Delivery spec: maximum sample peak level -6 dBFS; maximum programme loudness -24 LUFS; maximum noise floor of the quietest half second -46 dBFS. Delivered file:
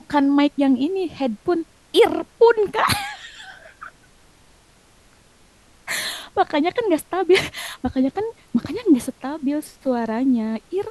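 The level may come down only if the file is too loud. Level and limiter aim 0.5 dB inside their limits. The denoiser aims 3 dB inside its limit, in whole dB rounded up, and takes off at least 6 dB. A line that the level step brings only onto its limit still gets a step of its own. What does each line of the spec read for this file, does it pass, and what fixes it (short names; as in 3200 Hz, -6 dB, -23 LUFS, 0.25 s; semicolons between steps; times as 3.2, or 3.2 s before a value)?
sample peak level -4.0 dBFS: fail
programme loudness -21.0 LUFS: fail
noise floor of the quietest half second -54 dBFS: OK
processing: gain -3.5 dB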